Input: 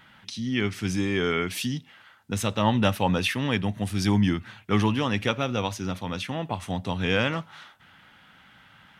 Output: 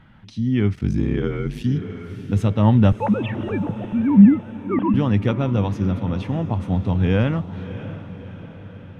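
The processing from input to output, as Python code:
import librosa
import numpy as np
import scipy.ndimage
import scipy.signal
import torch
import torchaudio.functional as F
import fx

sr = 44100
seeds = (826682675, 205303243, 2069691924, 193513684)

y = fx.sine_speech(x, sr, at=(2.92, 4.94))
y = fx.tilt_eq(y, sr, slope=-4.0)
y = fx.echo_diffused(y, sr, ms=625, feedback_pct=55, wet_db=-13)
y = fx.ring_mod(y, sr, carrier_hz=fx.line((0.75, 22.0), (1.63, 56.0)), at=(0.75, 1.63), fade=0.02)
y = F.gain(torch.from_numpy(y), -1.0).numpy()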